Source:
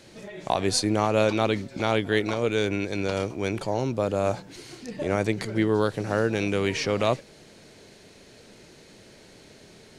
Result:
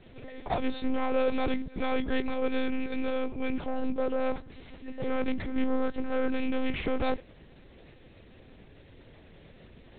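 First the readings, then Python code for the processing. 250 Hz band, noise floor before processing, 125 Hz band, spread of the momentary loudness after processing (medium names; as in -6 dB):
-3.0 dB, -52 dBFS, -14.0 dB, 8 LU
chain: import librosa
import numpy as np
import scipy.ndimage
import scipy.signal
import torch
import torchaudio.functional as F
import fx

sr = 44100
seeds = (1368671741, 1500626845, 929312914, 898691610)

y = fx.low_shelf(x, sr, hz=190.0, db=9.5)
y = np.clip(10.0 ** (14.5 / 20.0) * y, -1.0, 1.0) / 10.0 ** (14.5 / 20.0)
y = fx.lpc_monotone(y, sr, seeds[0], pitch_hz=260.0, order=8)
y = F.gain(torch.from_numpy(y), -4.5).numpy()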